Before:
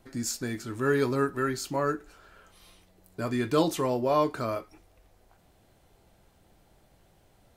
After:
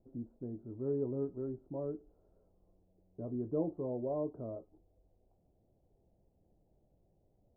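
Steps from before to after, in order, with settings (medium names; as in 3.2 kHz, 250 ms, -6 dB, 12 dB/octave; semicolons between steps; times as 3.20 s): inverse Chebyshev low-pass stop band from 2.2 kHz, stop band 60 dB; trim -9 dB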